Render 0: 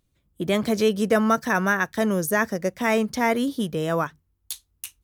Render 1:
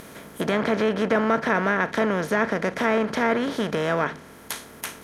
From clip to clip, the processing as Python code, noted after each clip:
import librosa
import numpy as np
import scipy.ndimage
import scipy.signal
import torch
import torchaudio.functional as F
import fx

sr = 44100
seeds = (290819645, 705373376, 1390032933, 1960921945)

y = fx.bin_compress(x, sr, power=0.4)
y = fx.env_lowpass_down(y, sr, base_hz=2700.0, full_db=-13.0)
y = fx.high_shelf(y, sr, hz=9000.0, db=5.0)
y = y * 10.0 ** (-5.0 / 20.0)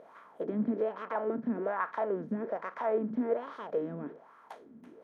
y = fx.wah_lfo(x, sr, hz=1.2, low_hz=220.0, high_hz=1200.0, q=5.1)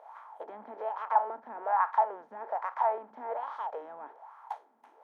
y = fx.highpass_res(x, sr, hz=840.0, q=7.1)
y = y * 10.0 ** (-3.0 / 20.0)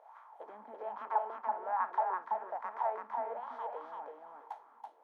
y = fx.echo_feedback(x, sr, ms=332, feedback_pct=17, wet_db=-3)
y = y * 10.0 ** (-6.5 / 20.0)